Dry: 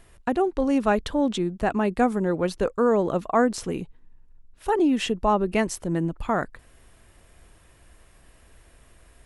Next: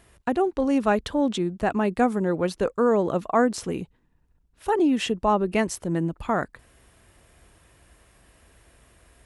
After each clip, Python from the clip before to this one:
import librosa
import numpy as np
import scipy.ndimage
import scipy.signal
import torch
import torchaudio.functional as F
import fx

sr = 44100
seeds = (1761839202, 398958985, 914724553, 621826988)

y = scipy.signal.sosfilt(scipy.signal.butter(2, 47.0, 'highpass', fs=sr, output='sos'), x)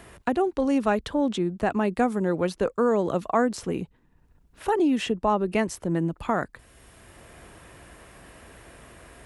y = fx.band_squash(x, sr, depth_pct=40)
y = y * 10.0 ** (-1.0 / 20.0)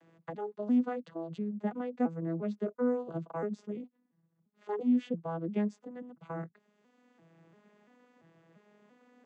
y = fx.vocoder_arp(x, sr, chord='major triad', root=52, every_ms=342)
y = y * 10.0 ** (-8.0 / 20.0)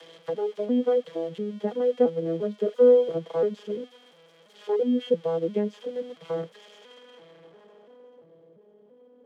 y = x + 0.5 * 10.0 ** (-32.0 / 20.0) * np.diff(np.sign(x), prepend=np.sign(x[:1]))
y = fx.filter_sweep_lowpass(y, sr, from_hz=3000.0, to_hz=390.0, start_s=6.71, end_s=8.54, q=0.71)
y = fx.small_body(y, sr, hz=(480.0, 3200.0), ring_ms=30, db=17)